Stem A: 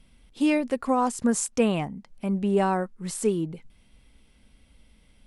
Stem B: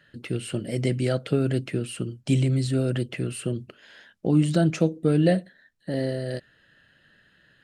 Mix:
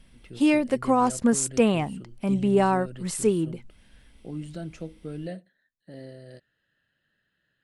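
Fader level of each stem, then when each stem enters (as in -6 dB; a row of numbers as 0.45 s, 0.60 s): +2.0 dB, -15.5 dB; 0.00 s, 0.00 s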